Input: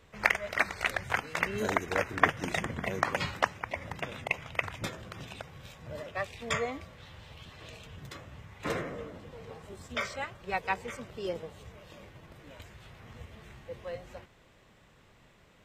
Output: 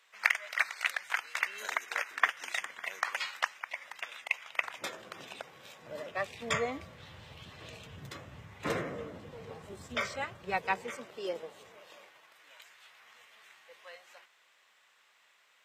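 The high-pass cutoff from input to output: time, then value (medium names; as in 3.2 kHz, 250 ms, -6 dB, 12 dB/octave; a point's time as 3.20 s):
4.39 s 1.3 kHz
5.00 s 330 Hz
5.77 s 330 Hz
6.65 s 84 Hz
10.50 s 84 Hz
11.09 s 350 Hz
11.67 s 350 Hz
12.34 s 1.2 kHz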